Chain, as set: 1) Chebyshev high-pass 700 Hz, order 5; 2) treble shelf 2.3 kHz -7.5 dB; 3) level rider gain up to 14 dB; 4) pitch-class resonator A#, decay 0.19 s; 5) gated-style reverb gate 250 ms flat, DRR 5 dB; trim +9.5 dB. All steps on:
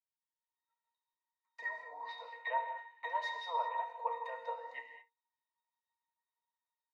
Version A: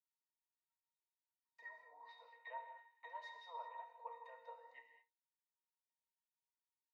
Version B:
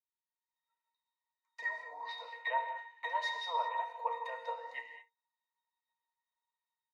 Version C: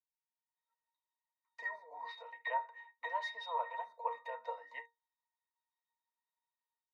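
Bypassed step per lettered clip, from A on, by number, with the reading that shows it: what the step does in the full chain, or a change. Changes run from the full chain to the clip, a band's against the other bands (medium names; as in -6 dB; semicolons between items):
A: 3, momentary loudness spread change -2 LU; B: 2, 4 kHz band +4.5 dB; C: 5, loudness change -2.0 LU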